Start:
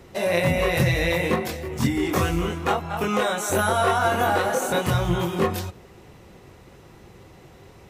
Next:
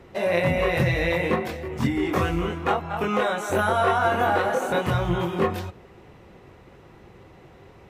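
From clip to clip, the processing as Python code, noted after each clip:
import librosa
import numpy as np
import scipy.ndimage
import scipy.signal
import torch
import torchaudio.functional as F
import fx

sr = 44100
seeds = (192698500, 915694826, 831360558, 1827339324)

y = fx.bass_treble(x, sr, bass_db=-2, treble_db=-11)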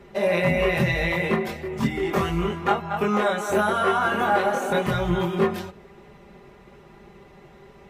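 y = x + 0.71 * np.pad(x, (int(5.0 * sr / 1000.0), 0))[:len(x)]
y = y * 10.0 ** (-1.0 / 20.0)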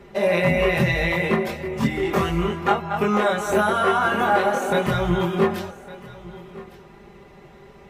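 y = x + 10.0 ** (-19.0 / 20.0) * np.pad(x, (int(1158 * sr / 1000.0), 0))[:len(x)]
y = y * 10.0 ** (2.0 / 20.0)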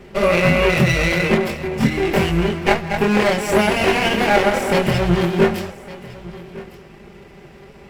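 y = fx.lower_of_two(x, sr, delay_ms=0.38)
y = y * 10.0 ** (5.0 / 20.0)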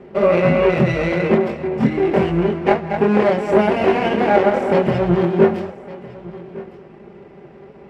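y = fx.bandpass_q(x, sr, hz=410.0, q=0.55)
y = y * 10.0 ** (3.0 / 20.0)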